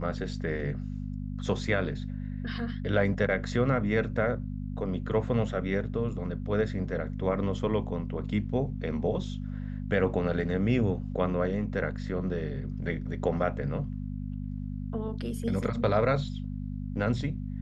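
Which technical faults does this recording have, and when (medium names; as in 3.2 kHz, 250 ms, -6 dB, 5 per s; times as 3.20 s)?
hum 50 Hz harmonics 5 -35 dBFS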